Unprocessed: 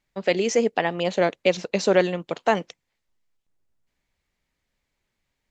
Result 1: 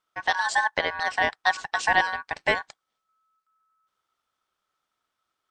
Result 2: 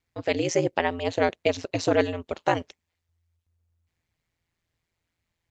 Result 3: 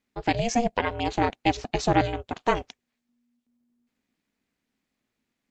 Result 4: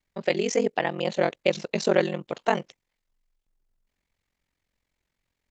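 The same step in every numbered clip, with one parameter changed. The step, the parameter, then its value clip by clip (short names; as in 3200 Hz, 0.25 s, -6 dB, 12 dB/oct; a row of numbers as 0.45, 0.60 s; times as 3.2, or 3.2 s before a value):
ring modulator, frequency: 1300, 84, 240, 22 Hz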